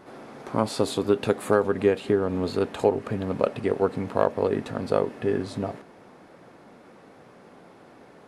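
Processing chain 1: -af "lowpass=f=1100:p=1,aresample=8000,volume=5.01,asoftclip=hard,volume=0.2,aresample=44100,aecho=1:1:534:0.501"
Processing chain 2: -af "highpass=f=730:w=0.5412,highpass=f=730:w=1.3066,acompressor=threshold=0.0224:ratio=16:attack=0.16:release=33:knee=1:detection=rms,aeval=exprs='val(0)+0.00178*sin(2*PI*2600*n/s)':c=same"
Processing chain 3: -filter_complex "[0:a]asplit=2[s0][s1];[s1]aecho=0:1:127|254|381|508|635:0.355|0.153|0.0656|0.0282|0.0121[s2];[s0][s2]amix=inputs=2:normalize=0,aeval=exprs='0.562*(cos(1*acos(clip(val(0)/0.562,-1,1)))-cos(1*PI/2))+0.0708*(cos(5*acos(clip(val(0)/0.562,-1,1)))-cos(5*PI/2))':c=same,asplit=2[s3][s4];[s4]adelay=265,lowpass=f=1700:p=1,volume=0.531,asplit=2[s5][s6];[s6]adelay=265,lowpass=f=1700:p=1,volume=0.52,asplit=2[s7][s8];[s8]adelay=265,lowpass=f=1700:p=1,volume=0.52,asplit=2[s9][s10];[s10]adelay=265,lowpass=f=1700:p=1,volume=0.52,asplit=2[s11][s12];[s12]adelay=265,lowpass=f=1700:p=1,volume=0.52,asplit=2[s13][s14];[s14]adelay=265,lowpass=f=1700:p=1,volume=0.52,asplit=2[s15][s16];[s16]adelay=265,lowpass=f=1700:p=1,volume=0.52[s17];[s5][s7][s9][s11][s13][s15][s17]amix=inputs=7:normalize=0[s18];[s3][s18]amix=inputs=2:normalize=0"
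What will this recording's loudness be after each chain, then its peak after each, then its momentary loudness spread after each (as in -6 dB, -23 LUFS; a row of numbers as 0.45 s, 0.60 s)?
-26.5 LUFS, -43.5 LUFS, -21.5 LUFS; -10.0 dBFS, -30.5 dBFS, -4.5 dBFS; 10 LU, 12 LU, 13 LU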